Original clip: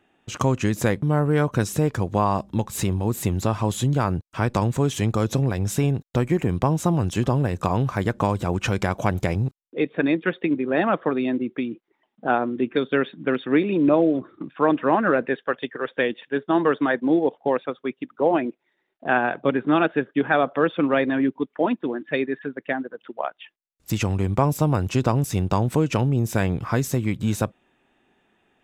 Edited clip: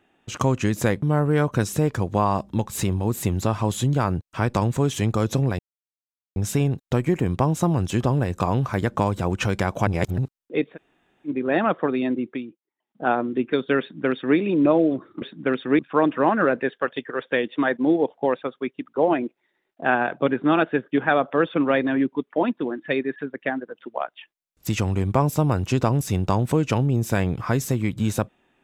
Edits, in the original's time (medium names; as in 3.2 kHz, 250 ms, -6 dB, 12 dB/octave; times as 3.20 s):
5.59 s: insert silence 0.77 s
9.10–9.41 s: reverse
9.96–10.52 s: room tone, crossfade 0.10 s
11.48–12.34 s: dip -20 dB, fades 0.33 s
13.03–13.60 s: copy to 14.45 s
16.22–16.79 s: delete